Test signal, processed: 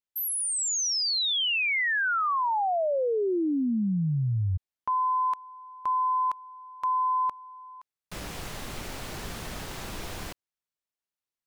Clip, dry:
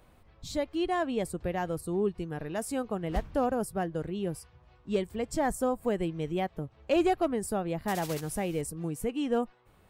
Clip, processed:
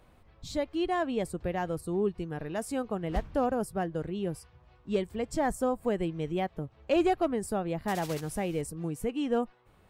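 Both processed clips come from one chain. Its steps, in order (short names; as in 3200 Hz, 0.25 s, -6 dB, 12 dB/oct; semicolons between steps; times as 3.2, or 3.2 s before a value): high shelf 8800 Hz -6 dB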